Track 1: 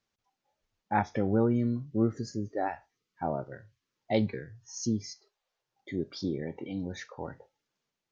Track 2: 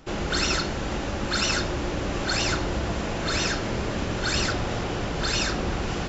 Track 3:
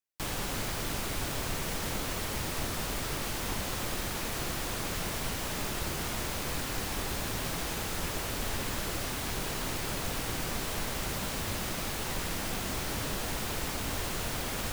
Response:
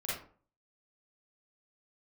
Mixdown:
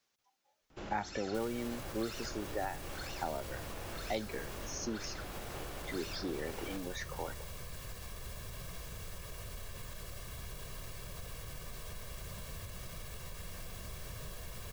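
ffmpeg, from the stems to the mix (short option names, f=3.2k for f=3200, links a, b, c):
-filter_complex "[0:a]lowshelf=f=220:g=-11.5,volume=2.5dB[a];[1:a]lowpass=f=3.3k:p=1,alimiter=limit=-22dB:level=0:latency=1,adelay=700,volume=-13dB[b];[2:a]aecho=1:1:1.8:0.65,alimiter=limit=-24dB:level=0:latency=1,bass=f=250:g=14,treble=f=4k:g=-2,adelay=1150,volume=-15dB[c];[a][b][c]amix=inputs=3:normalize=0,highshelf=f=5.8k:g=6,acrossover=split=310|1800|4500[d][e][f][g];[d]acompressor=threshold=-44dB:ratio=4[h];[e]acompressor=threshold=-36dB:ratio=4[i];[f]acompressor=threshold=-48dB:ratio=4[j];[g]acompressor=threshold=-48dB:ratio=4[k];[h][i][j][k]amix=inputs=4:normalize=0"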